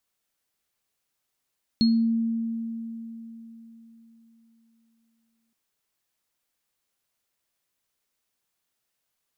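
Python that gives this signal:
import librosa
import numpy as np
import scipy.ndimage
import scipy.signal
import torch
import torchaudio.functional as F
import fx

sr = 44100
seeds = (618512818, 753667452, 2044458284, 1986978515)

y = fx.additive_free(sr, length_s=3.72, hz=228.0, level_db=-16, upper_db=(-6.0,), decay_s=3.89, upper_decays_s=(0.32,), upper_hz=(4280.0,))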